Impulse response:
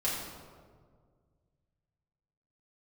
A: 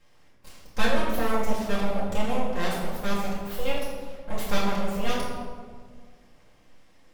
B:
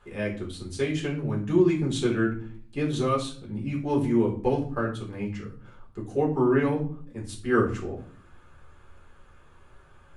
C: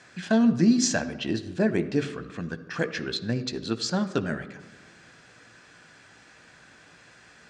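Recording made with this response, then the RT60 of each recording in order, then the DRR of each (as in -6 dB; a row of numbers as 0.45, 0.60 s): A; 1.8, 0.50, 1.2 s; -8.0, -4.0, 9.5 dB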